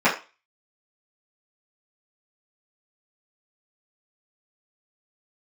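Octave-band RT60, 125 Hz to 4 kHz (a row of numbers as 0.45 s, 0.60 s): 0.20 s, 0.30 s, 0.30 s, 0.30 s, 0.30 s, 0.30 s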